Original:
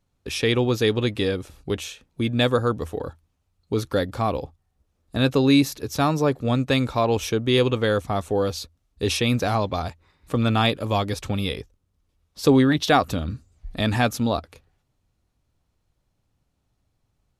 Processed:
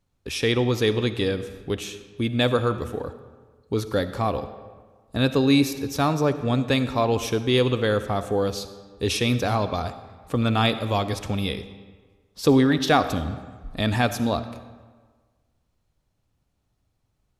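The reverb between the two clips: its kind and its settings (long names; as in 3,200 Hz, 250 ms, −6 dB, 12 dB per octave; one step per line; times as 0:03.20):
comb and all-pass reverb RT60 1.5 s, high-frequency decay 0.7×, pre-delay 20 ms, DRR 11.5 dB
level −1 dB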